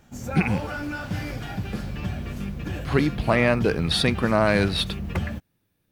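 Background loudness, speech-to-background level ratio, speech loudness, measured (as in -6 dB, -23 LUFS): -32.0 LUFS, 9.0 dB, -23.0 LUFS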